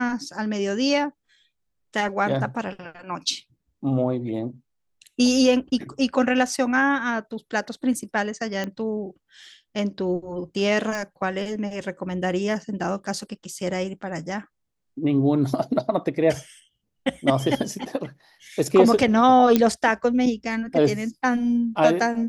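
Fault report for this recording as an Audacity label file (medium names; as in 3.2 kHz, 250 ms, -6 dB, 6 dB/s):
8.640000	8.640000	pop -15 dBFS
10.950000	10.950000	pop
19.560000	19.560000	pop -5 dBFS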